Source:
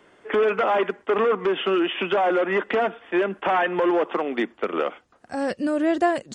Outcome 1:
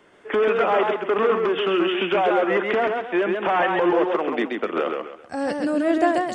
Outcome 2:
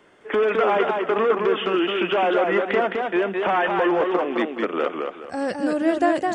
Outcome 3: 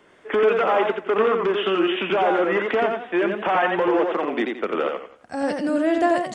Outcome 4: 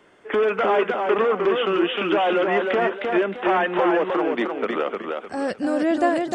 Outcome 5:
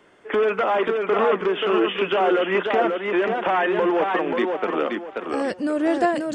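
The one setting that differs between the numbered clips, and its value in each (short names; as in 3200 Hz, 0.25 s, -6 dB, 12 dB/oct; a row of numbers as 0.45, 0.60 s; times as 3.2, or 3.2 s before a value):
warbling echo, time: 133, 210, 87, 308, 533 ms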